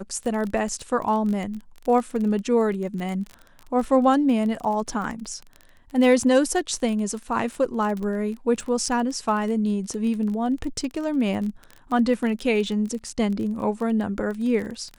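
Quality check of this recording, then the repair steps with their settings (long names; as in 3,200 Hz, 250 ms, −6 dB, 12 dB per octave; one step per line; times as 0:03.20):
surface crackle 22 per second −29 dBFS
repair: click removal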